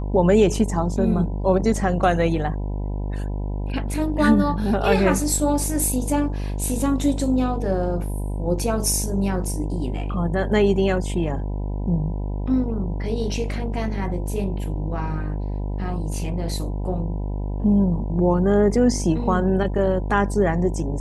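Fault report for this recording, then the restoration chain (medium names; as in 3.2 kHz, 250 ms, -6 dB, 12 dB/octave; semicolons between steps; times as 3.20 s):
buzz 50 Hz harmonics 20 -26 dBFS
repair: de-hum 50 Hz, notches 20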